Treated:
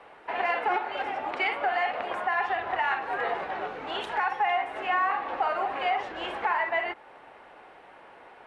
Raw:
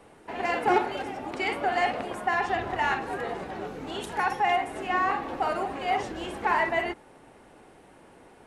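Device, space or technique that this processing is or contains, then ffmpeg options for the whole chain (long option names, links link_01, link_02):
DJ mixer with the lows and highs turned down: -filter_complex "[0:a]acrossover=split=540 3600:gain=0.141 1 0.0794[link_01][link_02][link_03];[link_01][link_02][link_03]amix=inputs=3:normalize=0,alimiter=level_in=0.5dB:limit=-24dB:level=0:latency=1:release=313,volume=-0.5dB,volume=7dB"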